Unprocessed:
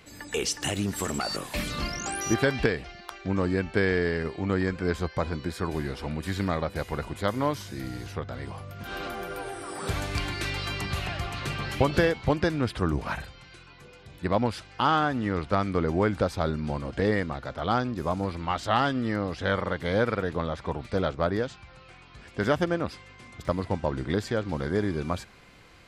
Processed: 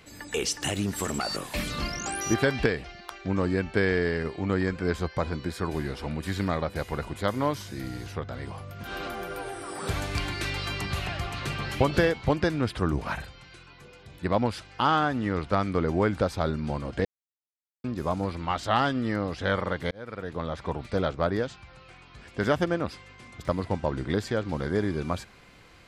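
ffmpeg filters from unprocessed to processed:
ffmpeg -i in.wav -filter_complex "[0:a]asplit=4[link_01][link_02][link_03][link_04];[link_01]atrim=end=17.05,asetpts=PTS-STARTPTS,afade=type=out:start_time=17.046:duration=0.004:curve=hsin[link_05];[link_02]atrim=start=17.05:end=17.84,asetpts=PTS-STARTPTS,volume=0[link_06];[link_03]atrim=start=17.84:end=19.91,asetpts=PTS-STARTPTS,afade=type=in:duration=0.004:curve=hsin,afade=type=out:start_time=2.066:duration=0.004:curve=hsin[link_07];[link_04]atrim=start=19.91,asetpts=PTS-STARTPTS,afade=type=in:duration=0.7[link_08];[link_05][link_06][link_07][link_08]concat=n=4:v=0:a=1" out.wav

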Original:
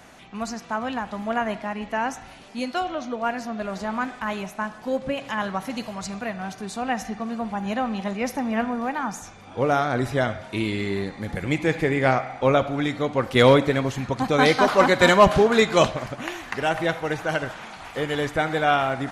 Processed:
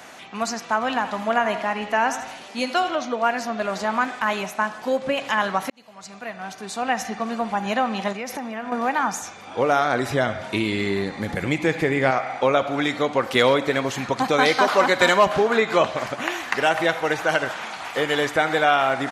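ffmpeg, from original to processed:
ffmpeg -i in.wav -filter_complex "[0:a]asplit=3[link_01][link_02][link_03];[link_01]afade=type=out:start_time=0.88:duration=0.02[link_04];[link_02]aecho=1:1:81|162|243|324|405:0.224|0.114|0.0582|0.0297|0.0151,afade=type=in:start_time=0.88:duration=0.02,afade=type=out:start_time=2.95:duration=0.02[link_05];[link_03]afade=type=in:start_time=2.95:duration=0.02[link_06];[link_04][link_05][link_06]amix=inputs=3:normalize=0,asettb=1/sr,asplit=3[link_07][link_08][link_09];[link_07]atrim=end=8.124[link_10];[link_08]atrim=start=8.12:end=8.72,asetpts=PTS-STARTPTS,afade=type=in:duration=0.004:curve=qsin,afade=type=out:start_time=0.596:duration=0.004:curve=qsin,acompressor=threshold=-30dB:ratio=10:attack=3.2:release=140:knee=1:detection=peak[link_11];[link_09]atrim=start=8.716[link_12];[link_10][link_11]acrossfade=duration=0.004:curve1=hsin:curve2=qsin[link_13];[link_13][link_12]acrossfade=duration=0.004:curve1=qsin:curve2=hsin,asettb=1/sr,asplit=3[link_14][link_15][link_16];[link_14]atrim=end=10.104[link_17];[link_15]atrim=start=10.1:end=12.11,asetpts=PTS-STARTPTS,afade=type=in:duration=0.004:curve=qsin,afade=type=out:start_time=2.006:duration=0.004:curve=qsin,lowshelf=frequency=230:gain=9.5[link_18];[link_16]atrim=start=12.106[link_19];[link_17][link_18]acrossfade=duration=0.004:curve1=hsin:curve2=qsin[link_20];[link_20][link_19]acrossfade=duration=0.004:curve1=qsin:curve2=hsin,asettb=1/sr,asplit=3[link_21][link_22][link_23];[link_21]atrim=end=15.294[link_24];[link_22]atrim=start=15.29:end=16.4,asetpts=PTS-STARTPTS,afade=type=in:duration=0.004:curve=qsin,afade=type=out:start_time=1.106:duration=0.004:curve=qsin,acrossover=split=2800[link_25][link_26];[link_26]acompressor=threshold=-40dB:ratio=4:attack=1:release=60[link_27];[link_25][link_27]amix=inputs=2:normalize=0[link_28];[link_23]atrim=start=16.396[link_29];[link_24][link_28]acrossfade=duration=0.004:curve1=hsin:curve2=qsin[link_30];[link_30][link_29]acrossfade=duration=0.004:curve1=qsin:curve2=hsin,asplit=2[link_31][link_32];[link_31]atrim=end=5.7,asetpts=PTS-STARTPTS,afade=type=out:start_time=5.696:duration=0.004:curve=hsin[link_33];[link_32]atrim=start=5.7,asetpts=PTS-STARTPTS,afade=type=in:duration=1.53[link_34];[link_33][link_34]concat=n=2:v=0:a=1,acompressor=threshold=-22dB:ratio=2.5,highpass=frequency=460:poles=1,equalizer=frequency=9800:width=6.3:gain=-4.5,volume=7.5dB" out.wav

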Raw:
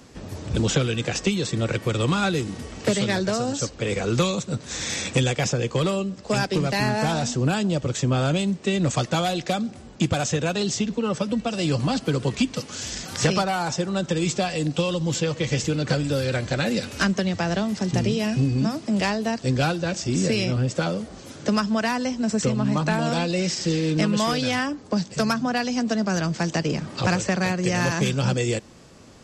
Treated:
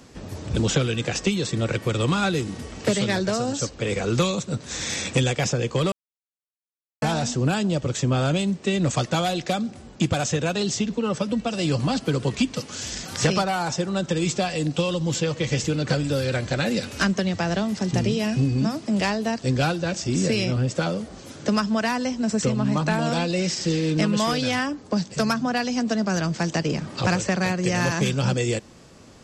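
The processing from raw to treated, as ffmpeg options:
ffmpeg -i in.wav -filter_complex "[0:a]asplit=3[link_01][link_02][link_03];[link_01]atrim=end=5.92,asetpts=PTS-STARTPTS,afade=type=out:start_time=5.916:duration=0.004:curve=hsin[link_04];[link_02]atrim=start=5.92:end=7.02,asetpts=PTS-STARTPTS,volume=0[link_05];[link_03]atrim=start=7.02,asetpts=PTS-STARTPTS,afade=type=in:duration=0.004:curve=hsin[link_06];[link_04][link_05][link_06]concat=n=3:v=0:a=1" out.wav

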